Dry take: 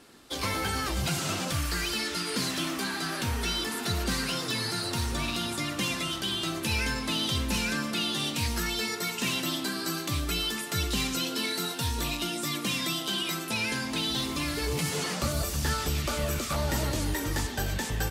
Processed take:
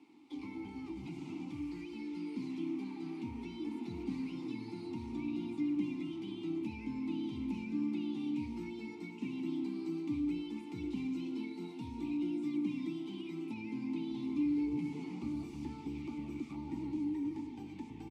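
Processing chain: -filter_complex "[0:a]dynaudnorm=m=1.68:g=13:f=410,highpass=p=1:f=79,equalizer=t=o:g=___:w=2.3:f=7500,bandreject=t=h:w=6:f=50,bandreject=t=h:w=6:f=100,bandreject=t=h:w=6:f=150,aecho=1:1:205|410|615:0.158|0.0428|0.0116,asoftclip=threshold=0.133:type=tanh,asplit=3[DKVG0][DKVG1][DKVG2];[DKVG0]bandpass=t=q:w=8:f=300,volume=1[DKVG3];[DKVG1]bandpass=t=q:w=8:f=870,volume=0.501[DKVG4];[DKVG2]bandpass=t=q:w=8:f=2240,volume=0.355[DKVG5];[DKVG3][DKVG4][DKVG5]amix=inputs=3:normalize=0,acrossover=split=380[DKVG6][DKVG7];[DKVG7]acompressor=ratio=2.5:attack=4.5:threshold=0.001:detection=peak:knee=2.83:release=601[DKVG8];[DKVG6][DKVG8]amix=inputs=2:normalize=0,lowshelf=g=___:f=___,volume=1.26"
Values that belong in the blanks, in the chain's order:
5.5, 8, 200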